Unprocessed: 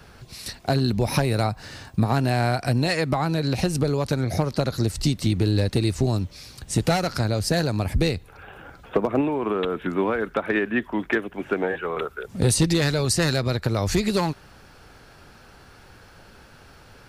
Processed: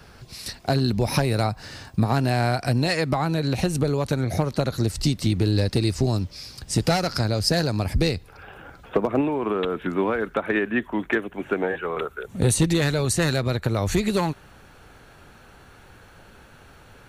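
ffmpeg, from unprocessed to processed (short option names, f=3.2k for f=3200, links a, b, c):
-af "asetnsamples=n=441:p=0,asendcmd='3.22 equalizer g -6.5;4.85 equalizer g 2;5.52 equalizer g 8.5;8.54 equalizer g -1.5;10.34 equalizer g -12.5',equalizer=f=5k:t=o:w=0.23:g=3"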